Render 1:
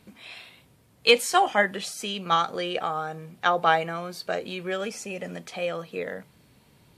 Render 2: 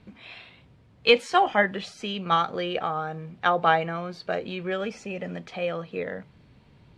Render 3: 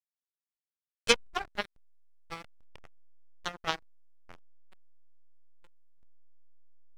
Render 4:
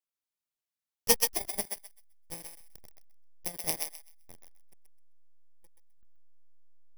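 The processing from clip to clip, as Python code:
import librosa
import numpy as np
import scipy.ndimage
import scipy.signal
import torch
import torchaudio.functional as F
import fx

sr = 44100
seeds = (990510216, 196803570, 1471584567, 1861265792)

y1 = scipy.signal.sosfilt(scipy.signal.butter(2, 3700.0, 'lowpass', fs=sr, output='sos'), x)
y1 = fx.low_shelf(y1, sr, hz=140.0, db=8.5)
y2 = fx.cheby_harmonics(y1, sr, harmonics=(2, 3, 5, 6), levels_db=(-15, -8, -28, -39), full_scale_db=-5.0)
y2 = fx.backlash(y2, sr, play_db=-39.5)
y3 = fx.bit_reversed(y2, sr, seeds[0], block=32)
y3 = fx.echo_thinned(y3, sr, ms=129, feedback_pct=22, hz=830.0, wet_db=-3.5)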